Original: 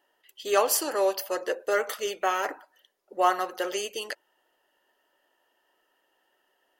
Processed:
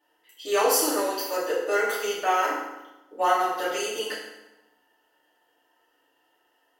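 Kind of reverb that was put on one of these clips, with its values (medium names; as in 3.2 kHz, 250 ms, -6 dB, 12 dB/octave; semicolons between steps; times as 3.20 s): FDN reverb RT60 1 s, low-frequency decay 1.2×, high-frequency decay 0.8×, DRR -8.5 dB; trim -6 dB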